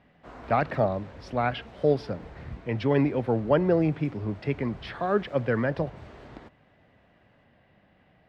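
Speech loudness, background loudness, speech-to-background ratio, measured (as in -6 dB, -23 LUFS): -27.5 LUFS, -46.5 LUFS, 19.0 dB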